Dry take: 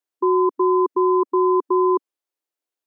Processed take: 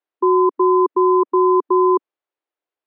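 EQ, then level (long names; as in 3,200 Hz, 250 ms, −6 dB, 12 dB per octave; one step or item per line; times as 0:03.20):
high-pass filter 320 Hz
high-frequency loss of the air 360 metres
+5.5 dB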